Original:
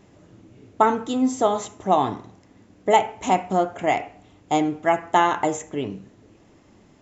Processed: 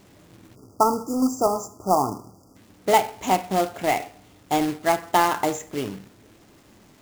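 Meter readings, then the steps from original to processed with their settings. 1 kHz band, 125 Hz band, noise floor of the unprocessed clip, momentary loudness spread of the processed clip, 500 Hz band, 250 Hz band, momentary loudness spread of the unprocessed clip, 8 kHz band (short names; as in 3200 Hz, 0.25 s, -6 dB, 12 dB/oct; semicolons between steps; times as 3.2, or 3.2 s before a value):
-1.0 dB, -1.0 dB, -55 dBFS, 11 LU, -1.5 dB, -1.0 dB, 11 LU, n/a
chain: companded quantiser 4-bit; spectral delete 0.55–2.56, 1400–4600 Hz; gain -1.5 dB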